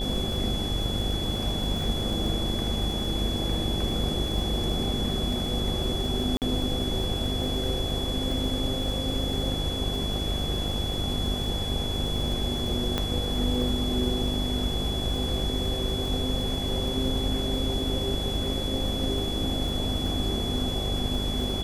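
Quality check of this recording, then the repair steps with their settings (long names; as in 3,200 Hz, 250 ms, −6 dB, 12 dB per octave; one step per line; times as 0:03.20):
mains buzz 50 Hz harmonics 16 −32 dBFS
surface crackle 57 per second −34 dBFS
whistle 3,400 Hz −32 dBFS
0:06.37–0:06.42: drop-out 48 ms
0:12.98: click −12 dBFS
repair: click removal
hum removal 50 Hz, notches 16
notch filter 3,400 Hz, Q 30
repair the gap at 0:06.37, 48 ms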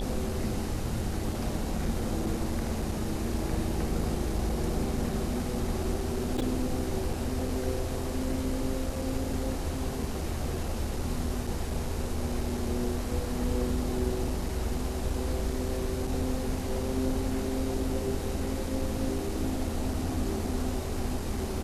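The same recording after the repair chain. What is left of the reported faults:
none of them is left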